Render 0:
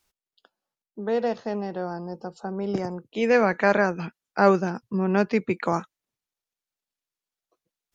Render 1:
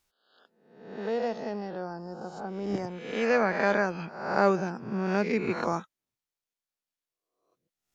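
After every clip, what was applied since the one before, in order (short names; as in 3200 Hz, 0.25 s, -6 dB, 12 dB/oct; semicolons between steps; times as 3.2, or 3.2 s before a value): spectral swells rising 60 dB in 0.77 s; gain -6 dB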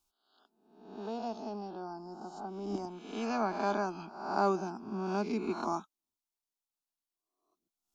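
fixed phaser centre 510 Hz, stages 6; gain -2 dB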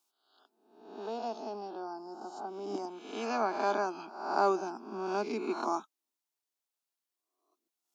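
HPF 270 Hz 24 dB/oct; gain +2 dB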